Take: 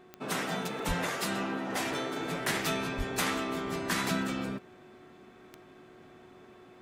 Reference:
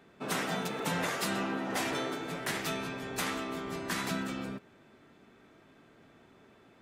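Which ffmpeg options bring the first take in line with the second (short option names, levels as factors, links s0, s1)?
-filter_complex "[0:a]adeclick=t=4,bandreject=f=365.9:t=h:w=4,bandreject=f=731.8:t=h:w=4,bandreject=f=1097.7:t=h:w=4,asplit=3[s0][s1][s2];[s0]afade=t=out:st=0.87:d=0.02[s3];[s1]highpass=f=140:w=0.5412,highpass=f=140:w=1.3066,afade=t=in:st=0.87:d=0.02,afade=t=out:st=0.99:d=0.02[s4];[s2]afade=t=in:st=0.99:d=0.02[s5];[s3][s4][s5]amix=inputs=3:normalize=0,asplit=3[s6][s7][s8];[s6]afade=t=out:st=2.97:d=0.02[s9];[s7]highpass=f=140:w=0.5412,highpass=f=140:w=1.3066,afade=t=in:st=2.97:d=0.02,afade=t=out:st=3.09:d=0.02[s10];[s8]afade=t=in:st=3.09:d=0.02[s11];[s9][s10][s11]amix=inputs=3:normalize=0,asetnsamples=n=441:p=0,asendcmd='2.16 volume volume -3.5dB',volume=1"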